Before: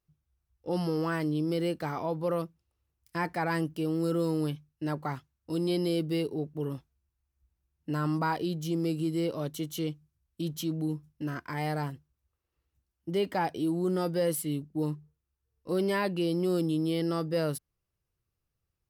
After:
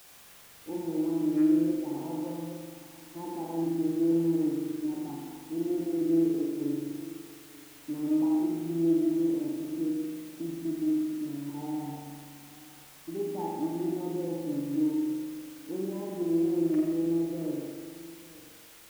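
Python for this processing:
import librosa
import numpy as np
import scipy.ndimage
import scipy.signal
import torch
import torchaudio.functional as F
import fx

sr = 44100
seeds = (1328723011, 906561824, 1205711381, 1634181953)

p1 = fx.reverse_delay(x, sr, ms=121, wet_db=-5)
p2 = fx.formant_cascade(p1, sr, vowel='u')
p3 = fx.cheby_harmonics(p2, sr, harmonics=(4, 6, 8), levels_db=(-22, -25, -33), full_scale_db=-22.0)
p4 = fx.highpass(p3, sr, hz=170.0, slope=6)
p5 = fx.quant_dither(p4, sr, seeds[0], bits=8, dither='triangular')
p6 = p4 + F.gain(torch.from_numpy(p5), -3.5).numpy()
p7 = p6 + 10.0 ** (-19.5 / 20.0) * np.pad(p6, (int(888 * sr / 1000.0), 0))[:len(p6)]
p8 = fx.rev_spring(p7, sr, rt60_s=1.6, pass_ms=(42,), chirp_ms=70, drr_db=-1.0)
y = F.gain(torch.from_numpy(p8), -2.0).numpy()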